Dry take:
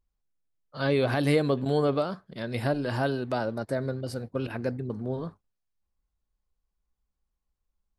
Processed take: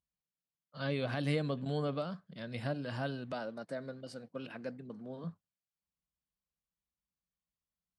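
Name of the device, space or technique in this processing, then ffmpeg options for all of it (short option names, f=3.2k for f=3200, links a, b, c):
car door speaker: -filter_complex "[0:a]asettb=1/sr,asplit=3[a][b][c];[a]atrim=end=3.324[d];[b]atrim=start=3.32:end=5.24,asetpts=PTS-STARTPTS,afade=t=in:d=0.004:c=qsin,afade=t=out:st=1.916:d=0.004:c=qsin,highpass=220[e];[c]atrim=start=5.236[f];[d][e]acrossfade=d=0.004:c1=hsin:c2=qsin[g];[g][f]acrossfade=d=0.004:c1=qsin:c2=hsin,highpass=90,equalizer=f=170:t=q:w=4:g=8,equalizer=f=380:t=q:w=4:g=-8,equalizer=f=870:t=q:w=4:g=-4,equalizer=f=3k:t=q:w=4:g=4,lowpass=f=9.1k:w=0.5412,lowpass=f=9.1k:w=1.3066,volume=-9dB"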